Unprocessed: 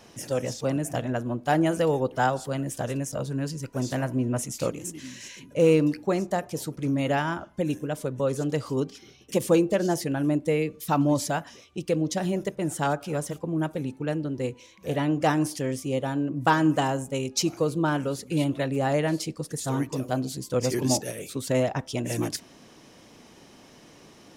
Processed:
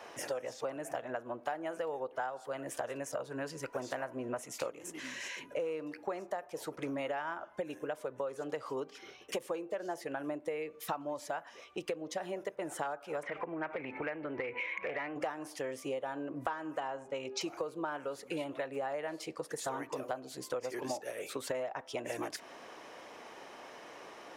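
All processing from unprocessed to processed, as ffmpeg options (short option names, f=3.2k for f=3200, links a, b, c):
-filter_complex "[0:a]asettb=1/sr,asplit=3[a][b][c];[a]atrim=end=13.234[d];[b]atrim=start=13.23:end=15.16,asetpts=PTS-STARTPTS,afade=t=in:d=0.004:c=qsin,afade=t=out:st=1.926:d=0.004:c=qsin,acompressor=threshold=-39dB:ratio=6:attack=3.2:release=140:knee=1:detection=peak,lowpass=f=2.2k:t=q:w=5.7,aeval=exprs='0.0668*sin(PI/2*2.24*val(0)/0.0668)':c=same[e];[c]atrim=start=15.156[f];[d][e]acrossfade=d=0.004:c1=hsin:c2=qsin[g];[g][f]acrossfade=d=0.004:c1=qsin:c2=hsin,asettb=1/sr,asplit=3[h][i][j];[h]atrim=end=16.804[k];[i]atrim=start=16.8:end=17.41,asetpts=PTS-STARTPTS,afade=t=in:d=0.004:c=qsin,afade=t=out:st=0.606:d=0.004:c=qsin,lowpass=5.4k,bandreject=f=197.8:t=h:w=4,bandreject=f=395.6:t=h:w=4,bandreject=f=593.4:t=h:w=4[l];[j]atrim=start=17.406[m];[k][l]acrossfade=d=0.004:c1=hsin:c2=qsin[n];[n][m]acrossfade=d=0.004:c1=qsin:c2=hsin,acrossover=split=440 2400:gain=0.0708 1 0.224[o][p][q];[o][p][q]amix=inputs=3:normalize=0,acompressor=threshold=-42dB:ratio=10,volume=7.5dB"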